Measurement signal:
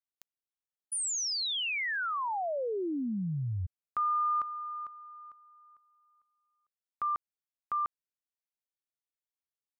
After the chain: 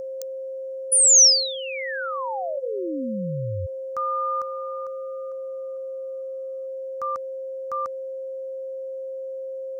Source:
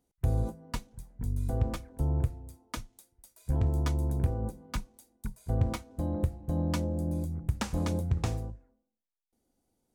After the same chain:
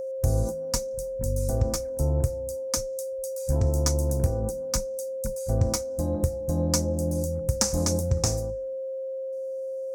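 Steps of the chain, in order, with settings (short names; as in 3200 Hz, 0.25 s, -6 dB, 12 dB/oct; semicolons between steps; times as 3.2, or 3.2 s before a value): whine 530 Hz -33 dBFS; resonant high shelf 4300 Hz +10.5 dB, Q 3; gain +3.5 dB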